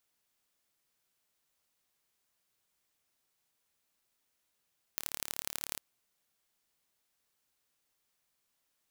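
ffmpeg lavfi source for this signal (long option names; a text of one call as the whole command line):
ffmpeg -f lavfi -i "aevalsrc='0.473*eq(mod(n,1212),0)*(0.5+0.5*eq(mod(n,3636),0))':duration=0.8:sample_rate=44100" out.wav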